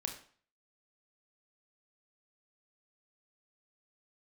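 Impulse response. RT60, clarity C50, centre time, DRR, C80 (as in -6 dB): 0.45 s, 8.5 dB, 18 ms, 3.5 dB, 12.5 dB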